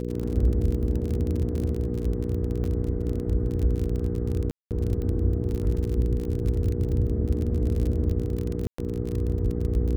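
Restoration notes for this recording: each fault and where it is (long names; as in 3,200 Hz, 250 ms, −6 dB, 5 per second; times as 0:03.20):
surface crackle 34 per second −28 dBFS
mains hum 60 Hz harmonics 8 −30 dBFS
0:02.64: drop-out 2.4 ms
0:04.51–0:04.71: drop-out 198 ms
0:08.67–0:08.78: drop-out 114 ms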